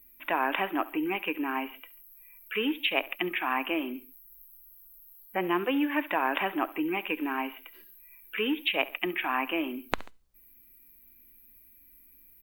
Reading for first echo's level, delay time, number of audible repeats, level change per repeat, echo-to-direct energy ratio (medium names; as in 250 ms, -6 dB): -19.0 dB, 69 ms, 2, -6.0 dB, -18.0 dB